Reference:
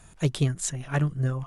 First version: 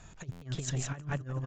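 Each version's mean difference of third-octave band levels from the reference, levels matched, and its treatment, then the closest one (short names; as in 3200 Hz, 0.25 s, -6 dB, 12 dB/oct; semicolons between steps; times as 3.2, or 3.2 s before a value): 10.5 dB: on a send: feedback echo 0.175 s, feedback 35%, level -8 dB; on the sum: negative-ratio compressor -30 dBFS, ratio -0.5; downsampling 16000 Hz; stuck buffer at 0.31, samples 512, times 8; gain -4.5 dB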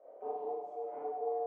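15.0 dB: compressor 2.5:1, threshold -42 dBFS, peak gain reduction 15.5 dB; ring modulator 590 Hz; Butterworth band-pass 540 Hz, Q 1.2; Schroeder reverb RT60 1.1 s, combs from 25 ms, DRR -9 dB; gain -4.5 dB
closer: first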